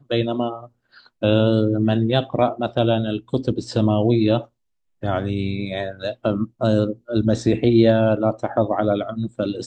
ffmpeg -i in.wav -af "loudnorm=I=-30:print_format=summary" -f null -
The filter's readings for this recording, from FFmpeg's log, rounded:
Input Integrated:    -20.6 LUFS
Input True Peak:      -4.0 dBTP
Input LRA:             3.1 LU
Input Threshold:     -30.8 LUFS